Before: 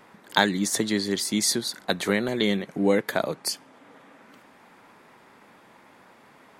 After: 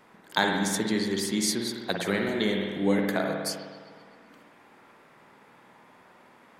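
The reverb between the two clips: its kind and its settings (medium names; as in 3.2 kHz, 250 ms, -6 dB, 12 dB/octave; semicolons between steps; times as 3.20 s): spring tank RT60 1.6 s, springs 51 ms, chirp 80 ms, DRR 1 dB; trim -4.5 dB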